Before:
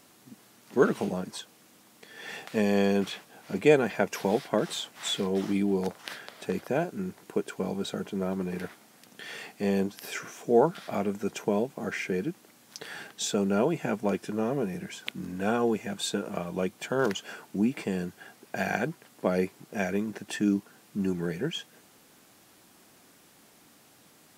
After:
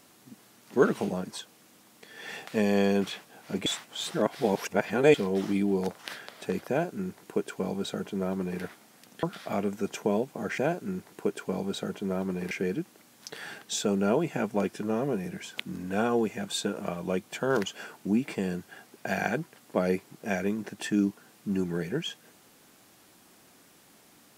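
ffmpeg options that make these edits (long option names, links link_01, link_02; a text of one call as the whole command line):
ffmpeg -i in.wav -filter_complex "[0:a]asplit=6[link_01][link_02][link_03][link_04][link_05][link_06];[link_01]atrim=end=3.662[link_07];[link_02]atrim=start=3.658:end=5.142,asetpts=PTS-STARTPTS,areverse[link_08];[link_03]atrim=start=5.138:end=9.232[link_09];[link_04]atrim=start=10.648:end=12.002[link_10];[link_05]atrim=start=6.688:end=8.622[link_11];[link_06]atrim=start=11.998[link_12];[link_07][link_08]acrossfade=duration=0.004:curve1=hsin:curve2=hsin[link_13];[link_13][link_09]acrossfade=duration=0.004:curve1=hsin:curve2=hsin[link_14];[link_14][link_10]acrossfade=duration=0.004:curve1=hsin:curve2=hsin[link_15];[link_15][link_11]acrossfade=duration=0.004:curve1=hsin:curve2=hsin[link_16];[link_16][link_12]acrossfade=duration=0.004:curve1=hsin:curve2=hsin" out.wav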